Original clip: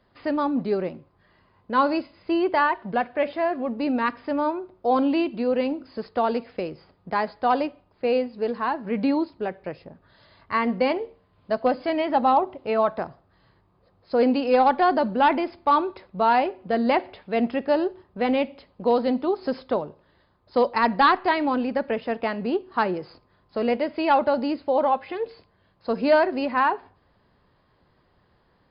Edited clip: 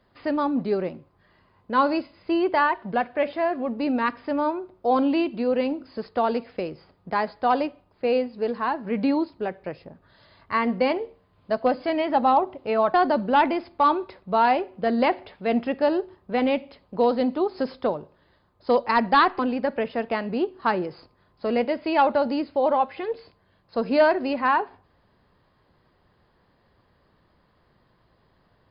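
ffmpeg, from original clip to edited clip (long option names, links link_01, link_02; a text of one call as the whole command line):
ffmpeg -i in.wav -filter_complex "[0:a]asplit=3[link_01][link_02][link_03];[link_01]atrim=end=12.942[link_04];[link_02]atrim=start=14.808:end=21.262[link_05];[link_03]atrim=start=21.508[link_06];[link_04][link_05]acrossfade=duration=0.004:curve1=hsin:curve2=hsin[link_07];[link_07][link_06]acrossfade=duration=0.004:curve1=hsin:curve2=hsin" out.wav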